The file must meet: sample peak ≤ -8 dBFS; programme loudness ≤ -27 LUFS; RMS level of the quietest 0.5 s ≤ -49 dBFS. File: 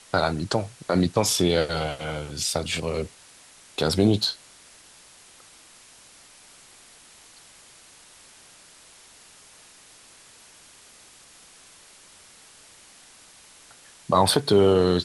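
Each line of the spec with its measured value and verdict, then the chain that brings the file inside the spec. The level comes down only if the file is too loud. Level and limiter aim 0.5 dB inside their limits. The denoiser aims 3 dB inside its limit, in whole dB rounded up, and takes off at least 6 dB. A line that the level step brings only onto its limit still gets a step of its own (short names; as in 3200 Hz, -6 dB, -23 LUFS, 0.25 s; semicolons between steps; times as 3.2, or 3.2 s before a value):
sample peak -5.5 dBFS: fail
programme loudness -23.5 LUFS: fail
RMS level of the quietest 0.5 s -51 dBFS: OK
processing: gain -4 dB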